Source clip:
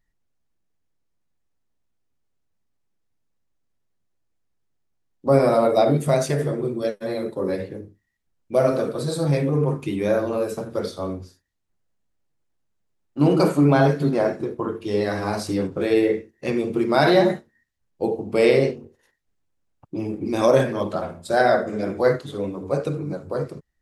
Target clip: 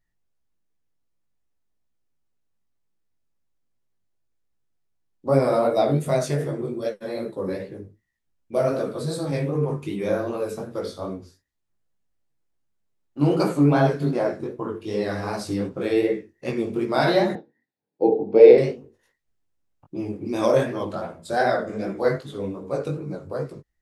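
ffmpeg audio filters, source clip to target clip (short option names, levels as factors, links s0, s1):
-filter_complex "[0:a]flanger=delay=15:depth=5.9:speed=2.6,asettb=1/sr,asplit=3[s0][s1][s2];[s0]atrim=end=17.354[s3];[s1]atrim=start=17.35:end=18.58,asetpts=PTS-STARTPTS,afade=t=in:d=0.004:c=qsin,afade=t=out:st=1.226:d=0.004:c=qsin,highpass=f=130:w=0.5412,highpass=f=130:w=1.3066,equalizer=f=300:t=q:w=4:g=9,equalizer=f=460:t=q:w=4:g=10,equalizer=f=800:t=q:w=4:g=7,equalizer=f=1200:t=q:w=4:g=-9,equalizer=f=1900:t=q:w=4:g=-5,equalizer=f=3000:t=q:w=4:g=-9,lowpass=f=4100:w=0.5412,lowpass=f=4100:w=1.3066[s4];[s2]atrim=start=18.576[s5];[s3][s4]acrossfade=d=0.004:c1=hsin:c2=qsin[s6];[s6][s5]acrossfade=d=0.004:c1=qsin:c2=hsin"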